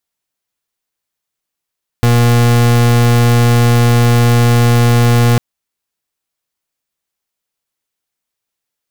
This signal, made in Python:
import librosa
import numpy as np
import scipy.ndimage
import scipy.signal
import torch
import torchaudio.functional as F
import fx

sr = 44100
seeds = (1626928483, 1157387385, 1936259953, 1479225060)

y = fx.pulse(sr, length_s=3.35, hz=119.0, level_db=-9.0, duty_pct=38)